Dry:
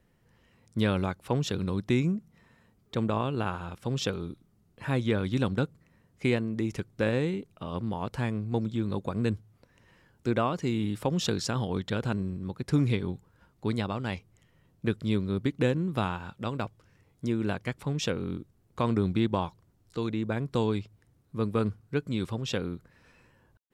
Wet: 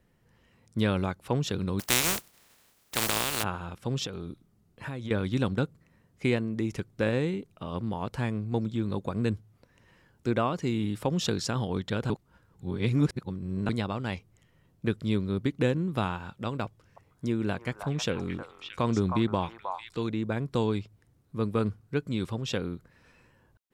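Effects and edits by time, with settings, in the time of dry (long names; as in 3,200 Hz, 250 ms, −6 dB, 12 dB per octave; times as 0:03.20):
0:01.79–0:03.42: compressing power law on the bin magnitudes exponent 0.2
0:04.06–0:05.11: downward compressor 10 to 1, threshold −32 dBFS
0:12.10–0:13.69: reverse
0:16.65–0:20.02: echo through a band-pass that steps 313 ms, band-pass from 960 Hz, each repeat 1.4 octaves, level −1.5 dB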